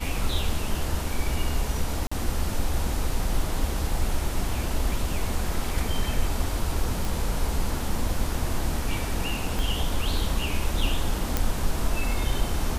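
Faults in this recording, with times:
2.07–2.12 gap 45 ms
7.05 pop
9.59 pop
11.37 pop

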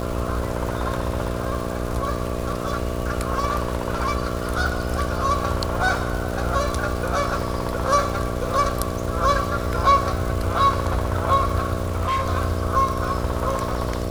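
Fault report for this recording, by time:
buzz 60 Hz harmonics 11 -28 dBFS
crackle 360/s -30 dBFS
11.81–12.28 clipped -19 dBFS

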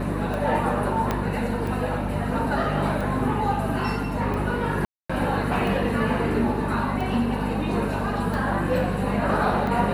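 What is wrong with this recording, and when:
hum 50 Hz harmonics 5 -29 dBFS
tick 45 rpm
1.11 pop -10 dBFS
4.85–5.09 gap 0.245 s

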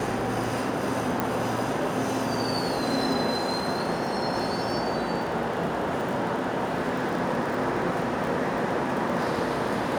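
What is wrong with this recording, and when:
crackle 32/s -31 dBFS
1.2 pop -11 dBFS

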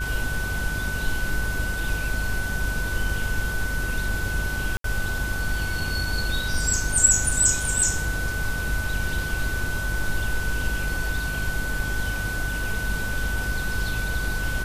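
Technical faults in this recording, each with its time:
buzz 50 Hz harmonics 37 -31 dBFS
tone 1500 Hz -29 dBFS
4.77–4.84 gap 73 ms

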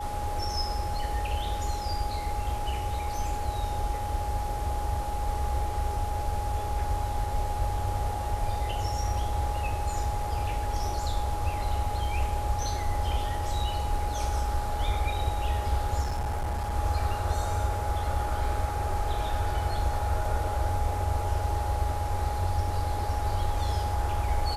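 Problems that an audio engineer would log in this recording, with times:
tone 830 Hz -33 dBFS
16.02–16.75 clipped -26.5 dBFS

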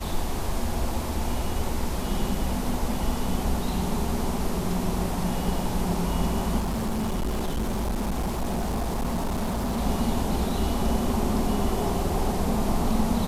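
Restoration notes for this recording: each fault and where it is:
6.59–9.81 clipped -23.5 dBFS

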